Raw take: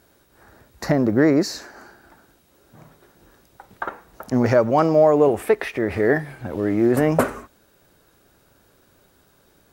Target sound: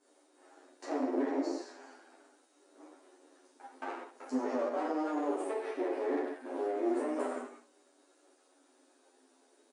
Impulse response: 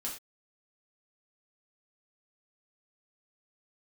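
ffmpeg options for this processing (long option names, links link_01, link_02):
-filter_complex "[0:a]bandreject=frequency=460:width=12[link_01];[1:a]atrim=start_sample=2205,asetrate=26460,aresample=44100[link_02];[link_01][link_02]afir=irnorm=-1:irlink=0,acrossover=split=330|1500[link_03][link_04][link_05];[link_03]acompressor=threshold=-27dB:ratio=4[link_06];[link_04]acompressor=threshold=-22dB:ratio=4[link_07];[link_05]acompressor=threshold=-41dB:ratio=4[link_08];[link_06][link_07][link_08]amix=inputs=3:normalize=0,acrossover=split=2800[link_09][link_10];[link_09]aeval=exprs='max(val(0),0)':channel_layout=same[link_11];[link_11][link_10]amix=inputs=2:normalize=0,equalizer=frequency=3200:width=0.31:gain=-11,asplit=2[link_12][link_13];[link_13]alimiter=limit=-18dB:level=0:latency=1,volume=-2dB[link_14];[link_12][link_14]amix=inputs=2:normalize=0,afftfilt=real='re*between(b*sr/4096,240,10000)':imag='im*between(b*sr/4096,240,10000)':win_size=4096:overlap=0.75,asplit=2[link_15][link_16];[link_16]adelay=10.2,afreqshift=-0.38[link_17];[link_15][link_17]amix=inputs=2:normalize=1,volume=-4.5dB"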